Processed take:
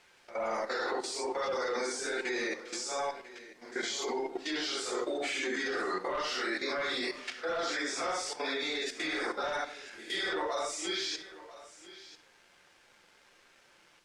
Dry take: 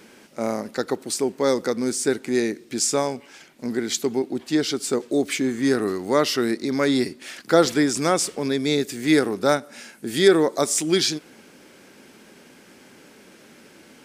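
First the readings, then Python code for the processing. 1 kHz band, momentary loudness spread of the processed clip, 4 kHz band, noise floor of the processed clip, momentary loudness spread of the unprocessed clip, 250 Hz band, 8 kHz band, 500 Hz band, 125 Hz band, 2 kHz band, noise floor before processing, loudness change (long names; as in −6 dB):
−6.5 dB, 13 LU, −7.5 dB, −63 dBFS, 10 LU, −18.5 dB, −13.0 dB, −13.0 dB, −27.0 dB, −4.5 dB, −50 dBFS, −11.5 dB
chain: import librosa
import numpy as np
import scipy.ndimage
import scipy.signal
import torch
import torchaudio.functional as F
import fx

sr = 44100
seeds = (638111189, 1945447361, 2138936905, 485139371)

y = fx.phase_scramble(x, sr, seeds[0], window_ms=200)
y = scipy.signal.sosfilt(scipy.signal.butter(2, 770.0, 'highpass', fs=sr, output='sos'), y)
y = fx.spec_gate(y, sr, threshold_db=-25, keep='strong')
y = fx.high_shelf(y, sr, hz=11000.0, db=-7.0)
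y = fx.rider(y, sr, range_db=3, speed_s=0.5)
y = fx.leveller(y, sr, passes=2)
y = fx.level_steps(y, sr, step_db=15)
y = fx.quant_dither(y, sr, seeds[1], bits=10, dither='triangular')
y = fx.air_absorb(y, sr, metres=77.0)
y = y + 10.0 ** (-17.0 / 20.0) * np.pad(y, (int(993 * sr / 1000.0), 0))[:len(y)]
y = fx.room_shoebox(y, sr, seeds[2], volume_m3=2800.0, walls='furnished', distance_m=0.86)
y = y * 10.0 ** (-3.0 / 20.0)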